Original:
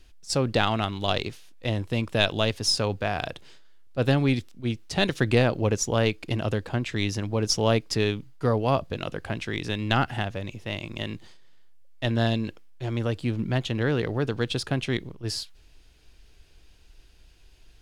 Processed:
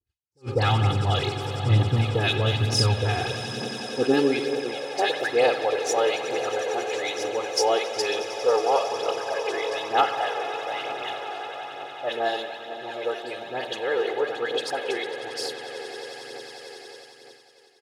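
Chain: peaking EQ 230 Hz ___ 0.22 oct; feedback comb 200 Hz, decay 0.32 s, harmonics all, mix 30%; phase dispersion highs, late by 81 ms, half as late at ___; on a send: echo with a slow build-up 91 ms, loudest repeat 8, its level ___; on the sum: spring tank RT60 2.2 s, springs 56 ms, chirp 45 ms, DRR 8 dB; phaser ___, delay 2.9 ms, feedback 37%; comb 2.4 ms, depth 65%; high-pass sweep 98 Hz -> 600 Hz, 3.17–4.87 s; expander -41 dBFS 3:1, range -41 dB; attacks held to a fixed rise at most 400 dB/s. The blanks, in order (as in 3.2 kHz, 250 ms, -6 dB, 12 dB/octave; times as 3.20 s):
+6.5 dB, 1.7 kHz, -17 dB, 1.1 Hz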